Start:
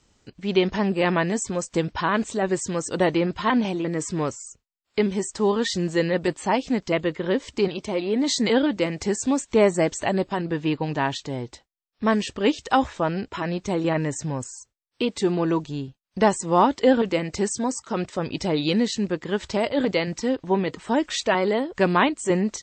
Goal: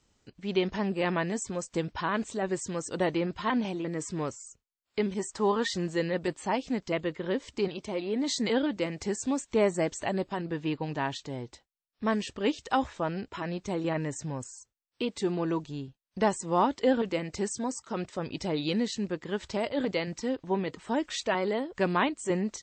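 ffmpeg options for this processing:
-filter_complex "[0:a]asettb=1/sr,asplit=3[a][b][c];[a]atrim=end=5.144[d];[b]atrim=start=5.14:end=5.86,asetpts=PTS-STARTPTS,afade=t=in:d=0.004:c=qsin,afade=t=out:st=0.716:d=0.004:c=qsin,adynamicequalizer=threshold=0.0126:dfrequency=1100:dqfactor=0.79:tfrequency=1100:tqfactor=0.79:attack=5:release=100:ratio=0.375:range=3.5:mode=boostabove:tftype=bell[e];[c]atrim=start=5.856[f];[d][e]acrossfade=d=0.004:c1=hsin:c2=qsin[g];[g][f]acrossfade=d=0.004:c1=qsin:c2=hsin,volume=-7dB"

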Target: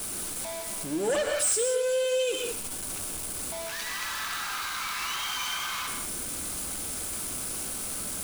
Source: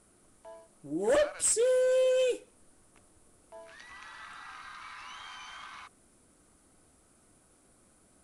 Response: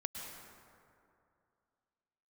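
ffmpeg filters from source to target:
-filter_complex "[0:a]aeval=exprs='val(0)+0.5*0.0106*sgn(val(0))':c=same,highshelf=f=2.3k:g=10,bandreject=f=1.9k:w=18,acrossover=split=200|2400[a][b][c];[c]asoftclip=type=hard:threshold=-21.5dB[d];[a][b][d]amix=inputs=3:normalize=0[e];[1:a]atrim=start_sample=2205,afade=t=out:st=0.25:d=0.01,atrim=end_sample=11466[f];[e][f]afir=irnorm=-1:irlink=0,acompressor=threshold=-30dB:ratio=3,volume=5dB"

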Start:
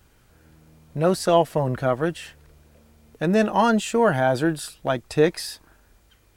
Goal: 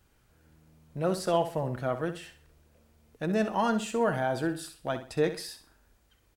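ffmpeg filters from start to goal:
-af "aecho=1:1:64|128|192|256:0.282|0.093|0.0307|0.0101,volume=-8.5dB"

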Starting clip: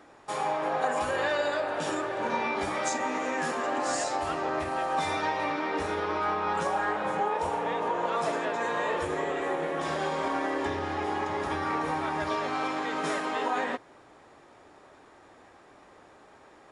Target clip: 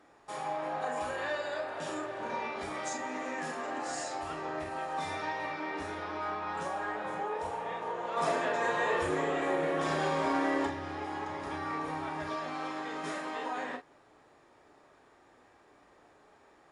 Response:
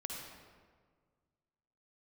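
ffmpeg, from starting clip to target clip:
-filter_complex "[0:a]asplit=3[a][b][c];[a]afade=t=out:st=8.16:d=0.02[d];[b]acontrast=64,afade=t=in:st=8.16:d=0.02,afade=t=out:st=10.65:d=0.02[e];[c]afade=t=in:st=10.65:d=0.02[f];[d][e][f]amix=inputs=3:normalize=0[g];[1:a]atrim=start_sample=2205,atrim=end_sample=3528,asetrate=70560,aresample=44100[h];[g][h]afir=irnorm=-1:irlink=0"

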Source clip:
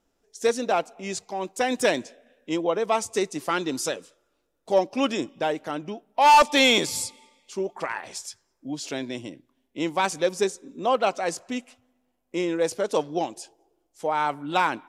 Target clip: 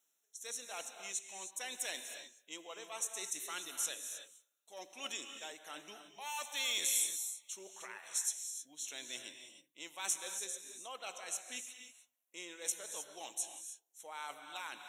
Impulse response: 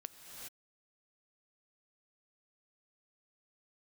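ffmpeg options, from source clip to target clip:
-filter_complex "[0:a]tremolo=f=1.2:d=0.62,areverse,acompressor=threshold=-29dB:ratio=6,areverse,asuperstop=centerf=4800:order=12:qfactor=3.9,aderivative[a];[1:a]atrim=start_sample=2205,afade=t=out:st=0.37:d=0.01,atrim=end_sample=16758[b];[a][b]afir=irnorm=-1:irlink=0,volume=9.5dB"

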